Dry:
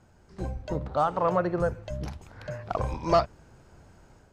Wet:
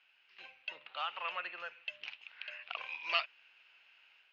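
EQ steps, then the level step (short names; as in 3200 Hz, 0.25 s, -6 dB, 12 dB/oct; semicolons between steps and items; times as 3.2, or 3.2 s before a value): resonant high-pass 2700 Hz, resonance Q 6.9; LPF 4500 Hz 12 dB/oct; air absorption 250 m; +3.0 dB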